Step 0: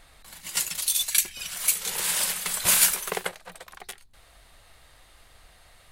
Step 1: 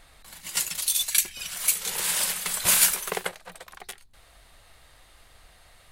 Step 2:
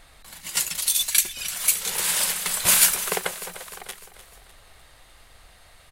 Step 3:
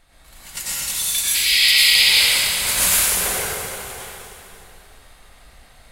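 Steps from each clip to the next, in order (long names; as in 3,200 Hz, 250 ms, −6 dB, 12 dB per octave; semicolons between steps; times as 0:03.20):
no processing that can be heard
repeating echo 301 ms, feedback 50%, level −14 dB; level +2.5 dB
sub-octave generator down 2 octaves, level +2 dB; sound drawn into the spectrogram noise, 0:01.34–0:02.09, 1,900–5,200 Hz −16 dBFS; dense smooth reverb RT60 2.8 s, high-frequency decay 0.8×, pre-delay 80 ms, DRR −10 dB; level −7.5 dB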